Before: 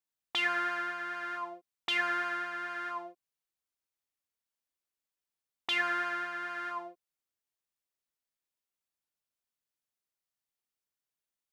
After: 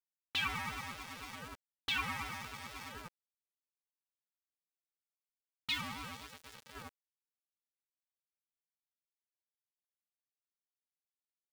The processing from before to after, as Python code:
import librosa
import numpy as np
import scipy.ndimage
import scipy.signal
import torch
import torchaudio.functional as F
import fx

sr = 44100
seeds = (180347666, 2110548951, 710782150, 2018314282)

y = fx.spec_box(x, sr, start_s=4.41, length_s=2.34, low_hz=790.0, high_hz=2400.0, gain_db=-9)
y = fx.fixed_phaser(y, sr, hz=480.0, stages=4)
y = fx.dynamic_eq(y, sr, hz=1000.0, q=1.2, threshold_db=-53.0, ratio=4.0, max_db=4)
y = np.where(np.abs(y) >= 10.0 ** (-42.0 / 20.0), y, 0.0)
y = fx.ring_lfo(y, sr, carrier_hz=540.0, swing_pct=20, hz=4.0)
y = y * 10.0 ** (1.5 / 20.0)